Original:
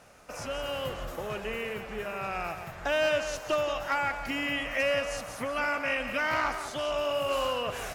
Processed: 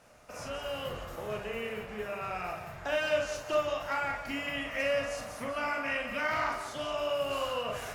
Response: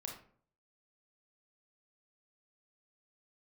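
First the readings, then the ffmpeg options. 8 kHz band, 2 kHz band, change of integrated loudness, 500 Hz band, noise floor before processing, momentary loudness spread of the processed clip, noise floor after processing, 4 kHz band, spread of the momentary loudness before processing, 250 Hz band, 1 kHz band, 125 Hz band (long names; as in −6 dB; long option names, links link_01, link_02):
−4.0 dB, −3.5 dB, −3.0 dB, −2.5 dB, −42 dBFS, 8 LU, −45 dBFS, −3.5 dB, 9 LU, −3.0 dB, −3.0 dB, −2.5 dB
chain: -filter_complex "[1:a]atrim=start_sample=2205,atrim=end_sample=3087[link_01];[0:a][link_01]afir=irnorm=-1:irlink=0"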